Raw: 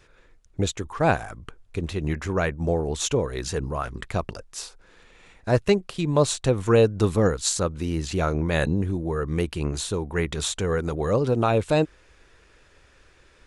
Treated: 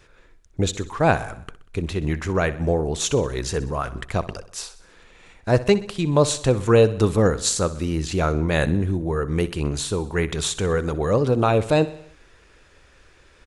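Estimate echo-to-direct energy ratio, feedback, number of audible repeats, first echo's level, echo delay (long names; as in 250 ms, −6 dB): −15.0 dB, 56%, 4, −16.5 dB, 63 ms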